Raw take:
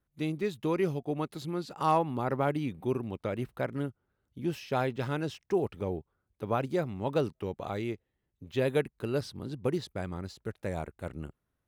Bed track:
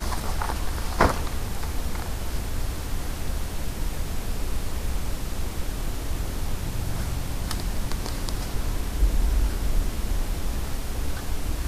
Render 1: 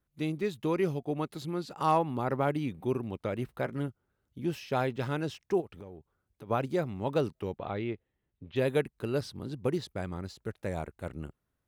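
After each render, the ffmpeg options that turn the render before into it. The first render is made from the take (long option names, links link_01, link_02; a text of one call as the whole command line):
ffmpeg -i in.wav -filter_complex "[0:a]asettb=1/sr,asplit=3[link_01][link_02][link_03];[link_01]atrim=end=3.484[link_04];[link_02]atrim=start=3.48:end=3.88,asetpts=PTS-STARTPTS,afade=type=in:duration=0.004:curve=qsin,afade=type=out:start_time=0.396:duration=0.004:curve=qsin,asplit=2[link_05][link_06];[link_06]adelay=13,volume=-12dB[link_07];[link_05][link_07]amix=inputs=2:normalize=0,atrim=end_sample=17640[link_08];[link_03]atrim=start=3.876[link_09];[link_04][link_08]acrossfade=duration=0.004:curve1=hsin:curve2=qsin[link_10];[link_10][link_09]acrossfade=duration=0.004:curve1=qsin:curve2=hsin,asplit=3[link_11][link_12][link_13];[link_11]afade=type=out:start_time=5.6:duration=0.02[link_14];[link_12]acompressor=threshold=-43dB:ratio=5:attack=3.2:release=140:knee=1:detection=peak,afade=type=in:start_time=5.6:duration=0.02,afade=type=out:start_time=6.49:duration=0.02[link_15];[link_13]afade=type=in:start_time=6.49:duration=0.02[link_16];[link_14][link_15][link_16]amix=inputs=3:normalize=0,asettb=1/sr,asplit=3[link_17][link_18][link_19];[link_17]atrim=end=7.584[link_20];[link_18]atrim=start=7.58:end=8.56,asetpts=PTS-STARTPTS,afade=type=in:duration=0.004:curve=qsin,afade=type=out:start_time=0.976:duration=0.004:curve=qsin,lowpass=frequency=3700:width=0.5412,lowpass=frequency=3700:width=1.3066[link_21];[link_19]atrim=start=8.556[link_22];[link_20][link_21]acrossfade=duration=0.004:curve1=hsin:curve2=qsin[link_23];[link_23][link_22]acrossfade=duration=0.004:curve1=qsin:curve2=hsin" out.wav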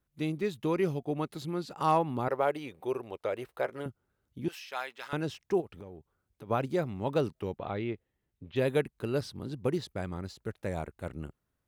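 ffmpeg -i in.wav -filter_complex "[0:a]asettb=1/sr,asplit=3[link_01][link_02][link_03];[link_01]atrim=end=2.284[link_04];[link_02]atrim=start=2.28:end=3.86,asetpts=PTS-STARTPTS,afade=type=in:duration=0.004:curve=qsin,afade=type=out:start_time=1.576:duration=0.004:curve=qsin,lowshelf=frequency=320:width_type=q:width=1.5:gain=-11.5[link_05];[link_03]atrim=start=3.856[link_06];[link_04][link_05]acrossfade=duration=0.004:curve1=hsin:curve2=qsin[link_07];[link_07][link_06]acrossfade=duration=0.004:curve1=qsin:curve2=hsin,asettb=1/sr,asplit=3[link_08][link_09][link_10];[link_08]atrim=end=4.484[link_11];[link_09]atrim=start=4.48:end=5.13,asetpts=PTS-STARTPTS,afade=type=in:duration=0.004:curve=qsin,afade=type=out:start_time=0.646:duration=0.004:curve=qsin,highpass=1100[link_12];[link_10]atrim=start=5.126[link_13];[link_11][link_12]acrossfade=duration=0.004:curve1=hsin:curve2=qsin[link_14];[link_14][link_13]acrossfade=duration=0.004:curve1=qsin:curve2=hsin" out.wav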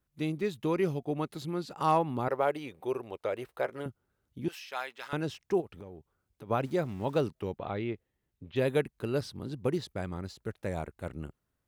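ffmpeg -i in.wav -filter_complex "[0:a]asettb=1/sr,asplit=3[link_01][link_02][link_03];[link_01]atrim=end=6.644[link_04];[link_02]atrim=start=6.64:end=7.24,asetpts=PTS-STARTPTS,afade=type=in:duration=0.004:curve=qsin,afade=type=out:start_time=0.596:duration=0.004:curve=qsin,aeval=exprs='val(0)*gte(abs(val(0)),0.00282)':channel_layout=same[link_05];[link_03]atrim=start=7.236[link_06];[link_04][link_05]acrossfade=duration=0.004:curve1=hsin:curve2=qsin[link_07];[link_07][link_06]acrossfade=duration=0.004:curve1=qsin:curve2=hsin" out.wav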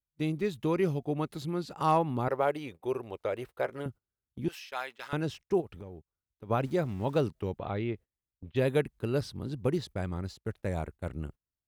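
ffmpeg -i in.wav -af "agate=range=-20dB:threshold=-47dB:ratio=16:detection=peak,lowshelf=frequency=99:gain=8.5" out.wav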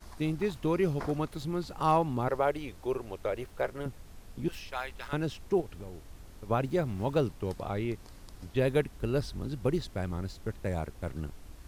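ffmpeg -i in.wav -i bed.wav -filter_complex "[1:a]volume=-21dB[link_01];[0:a][link_01]amix=inputs=2:normalize=0" out.wav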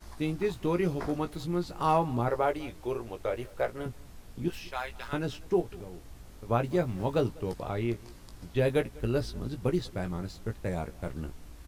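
ffmpeg -i in.wav -filter_complex "[0:a]asplit=2[link_01][link_02];[link_02]adelay=17,volume=-7dB[link_03];[link_01][link_03]amix=inputs=2:normalize=0,asplit=2[link_04][link_05];[link_05]adelay=198.3,volume=-23dB,highshelf=frequency=4000:gain=-4.46[link_06];[link_04][link_06]amix=inputs=2:normalize=0" out.wav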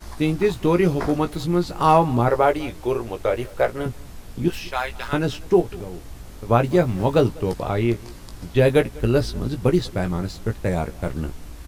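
ffmpeg -i in.wav -af "volume=10dB" out.wav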